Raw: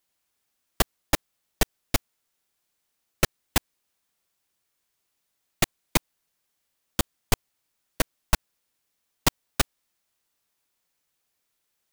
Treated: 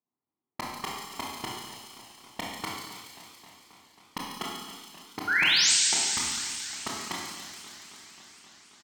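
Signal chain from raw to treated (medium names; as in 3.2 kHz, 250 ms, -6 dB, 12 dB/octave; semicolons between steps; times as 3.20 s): level-controlled noise filter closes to 340 Hz, open at -20.5 dBFS; high-pass 180 Hz 12 dB/octave; treble shelf 6.1 kHz -12 dB; comb 1.3 ms, depth 70%; compression 2:1, threshold -42 dBFS, peak gain reduction 13 dB; painted sound rise, 7.12–7.74 s, 1–6.6 kHz -27 dBFS; feedback echo behind a high-pass 190 ms, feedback 71%, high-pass 2.8 kHz, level -3.5 dB; Schroeder reverb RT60 1.6 s, combs from 30 ms, DRR -3.5 dB; speed mistake 33 rpm record played at 45 rpm; modulated delay 267 ms, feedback 77%, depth 150 cents, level -16 dB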